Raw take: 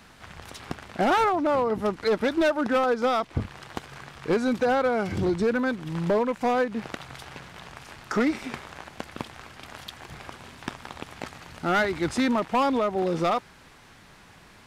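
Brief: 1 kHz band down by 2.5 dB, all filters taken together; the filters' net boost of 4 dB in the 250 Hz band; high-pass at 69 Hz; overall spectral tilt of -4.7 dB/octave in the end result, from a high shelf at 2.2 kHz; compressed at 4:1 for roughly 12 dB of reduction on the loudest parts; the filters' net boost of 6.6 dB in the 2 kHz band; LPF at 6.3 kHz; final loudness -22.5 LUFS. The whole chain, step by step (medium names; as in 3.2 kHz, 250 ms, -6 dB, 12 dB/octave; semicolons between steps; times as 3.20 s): high-pass 69 Hz; low-pass 6.3 kHz; peaking EQ 250 Hz +5 dB; peaking EQ 1 kHz -8.5 dB; peaking EQ 2 kHz +8 dB; treble shelf 2.2 kHz +8 dB; compression 4:1, threshold -31 dBFS; trim +11.5 dB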